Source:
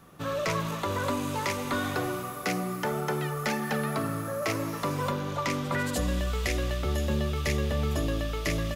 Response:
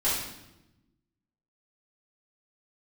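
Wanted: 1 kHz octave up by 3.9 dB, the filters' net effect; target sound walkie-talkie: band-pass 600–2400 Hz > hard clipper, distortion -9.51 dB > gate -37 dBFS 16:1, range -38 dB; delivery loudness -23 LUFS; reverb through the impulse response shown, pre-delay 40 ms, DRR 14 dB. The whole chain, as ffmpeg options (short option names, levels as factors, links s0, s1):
-filter_complex "[0:a]equalizer=f=1000:t=o:g=5.5,asplit=2[s0][s1];[1:a]atrim=start_sample=2205,adelay=40[s2];[s1][s2]afir=irnorm=-1:irlink=0,volume=0.0562[s3];[s0][s3]amix=inputs=2:normalize=0,highpass=600,lowpass=2400,asoftclip=type=hard:threshold=0.0335,agate=range=0.0126:threshold=0.0141:ratio=16,volume=3.55"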